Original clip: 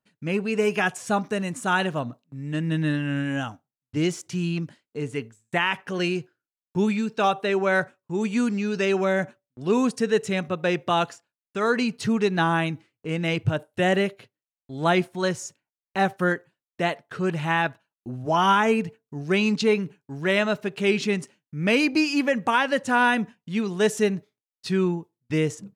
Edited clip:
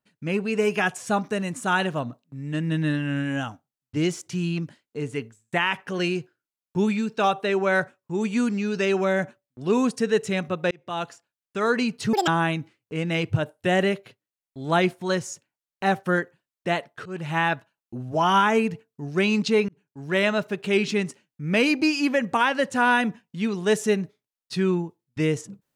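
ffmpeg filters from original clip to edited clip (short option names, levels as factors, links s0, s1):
-filter_complex "[0:a]asplit=6[s0][s1][s2][s3][s4][s5];[s0]atrim=end=10.71,asetpts=PTS-STARTPTS,afade=t=out:st=10.706:d=0.004:c=hsin[s6];[s1]atrim=start=10.71:end=12.134,asetpts=PTS-STARTPTS,afade=t=in:d=0.9:c=qsin[s7];[s2]atrim=start=12.13:end=12.41,asetpts=PTS-STARTPTS,asetrate=84672,aresample=44100,atrim=end_sample=6431,asetpts=PTS-STARTPTS[s8];[s3]atrim=start=12.406:end=17.19,asetpts=PTS-STARTPTS,afade=t=out:st=4.78:d=0.004:c=hsin:silence=0.133352[s9];[s4]atrim=start=17.19:end=19.82,asetpts=PTS-STARTPTS,afade=t=in:d=0.3:silence=0.133352,afade=t=out:st=2.626:d=0.004:c=hsin[s10];[s5]atrim=start=19.82,asetpts=PTS-STARTPTS,afade=t=in:d=0.46[s11];[s6][s7]concat=n=2:v=0:a=1[s12];[s12][s8]acrossfade=d=0.004:c1=hsin:c2=hsin[s13];[s9][s10][s11]concat=n=3:v=0:a=1[s14];[s13][s14]acrossfade=d=0.004:c1=hsin:c2=hsin"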